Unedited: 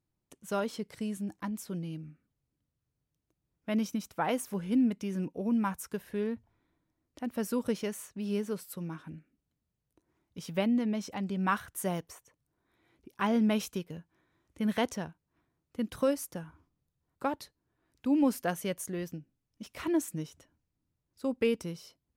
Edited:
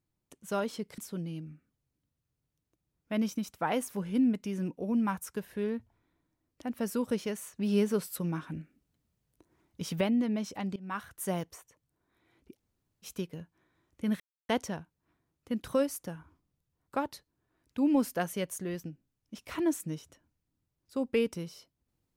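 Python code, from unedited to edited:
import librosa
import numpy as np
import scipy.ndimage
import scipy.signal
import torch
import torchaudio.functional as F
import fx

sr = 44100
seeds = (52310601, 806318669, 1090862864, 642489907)

y = fx.edit(x, sr, fx.cut(start_s=0.98, length_s=0.57),
    fx.clip_gain(start_s=8.13, length_s=2.45, db=5.5),
    fx.fade_in_from(start_s=11.33, length_s=0.53, floor_db=-20.0),
    fx.room_tone_fill(start_s=13.13, length_s=0.51, crossfade_s=0.1),
    fx.insert_silence(at_s=14.77, length_s=0.29), tone=tone)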